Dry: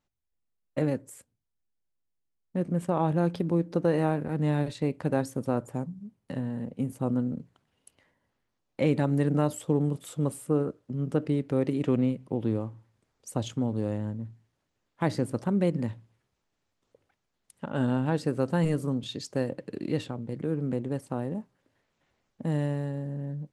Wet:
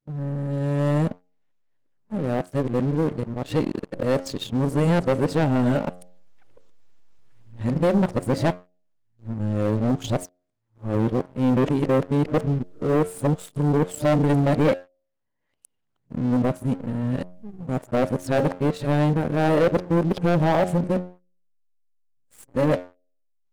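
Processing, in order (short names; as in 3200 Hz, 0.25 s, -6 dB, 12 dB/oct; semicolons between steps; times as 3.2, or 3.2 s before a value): whole clip reversed; dynamic EQ 640 Hz, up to +7 dB, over -43 dBFS, Q 2.1; de-hum 89.89 Hz, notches 9; in parallel at -3.5 dB: backlash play -26 dBFS; on the sum: sample leveller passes 3; gain -6.5 dB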